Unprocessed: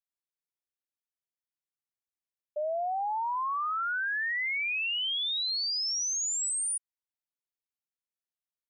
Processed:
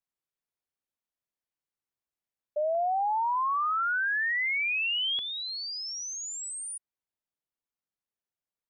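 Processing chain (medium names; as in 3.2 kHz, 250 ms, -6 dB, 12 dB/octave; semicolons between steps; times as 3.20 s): treble shelf 2.1 kHz -7.5 dB, from 2.75 s -3 dB, from 5.19 s -11 dB; trim +4 dB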